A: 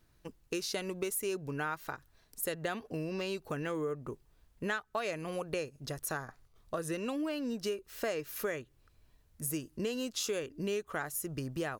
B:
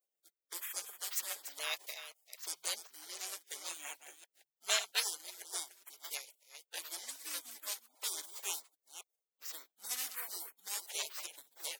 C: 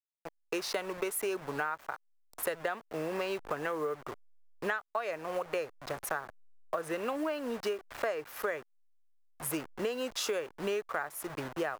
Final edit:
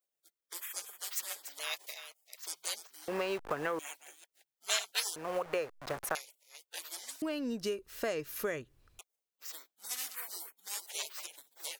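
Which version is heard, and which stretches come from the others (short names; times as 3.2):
B
3.08–3.79 from C
5.16–6.15 from C
7.22–8.99 from A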